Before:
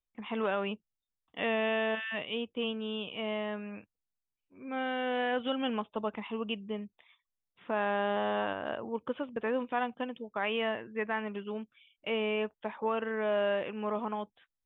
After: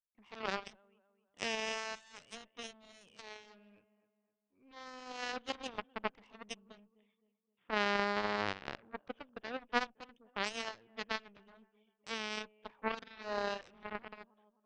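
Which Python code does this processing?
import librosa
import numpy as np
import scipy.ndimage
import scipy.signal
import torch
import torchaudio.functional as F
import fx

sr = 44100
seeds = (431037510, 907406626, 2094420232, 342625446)

y = fx.echo_filtered(x, sr, ms=259, feedback_pct=44, hz=2800.0, wet_db=-17.0)
y = fx.cheby_harmonics(y, sr, harmonics=(3, 6), levels_db=(-9, -39), full_scale_db=-18.0)
y = y * librosa.db_to_amplitude(4.5)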